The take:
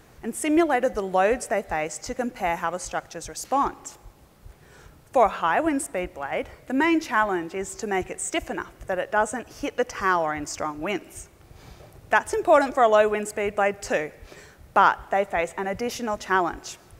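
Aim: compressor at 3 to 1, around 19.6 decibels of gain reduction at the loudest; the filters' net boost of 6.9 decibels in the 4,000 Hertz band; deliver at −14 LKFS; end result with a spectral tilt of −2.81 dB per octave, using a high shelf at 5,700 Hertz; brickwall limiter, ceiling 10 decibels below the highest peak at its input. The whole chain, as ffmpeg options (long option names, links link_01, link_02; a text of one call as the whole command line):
ffmpeg -i in.wav -af "equalizer=frequency=4000:width_type=o:gain=8,highshelf=frequency=5700:gain=5.5,acompressor=threshold=-40dB:ratio=3,volume=27.5dB,alimiter=limit=-3dB:level=0:latency=1" out.wav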